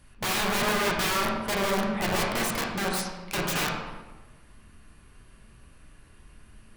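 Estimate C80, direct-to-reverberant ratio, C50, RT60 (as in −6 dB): 4.5 dB, −2.5 dB, 2.0 dB, 1.2 s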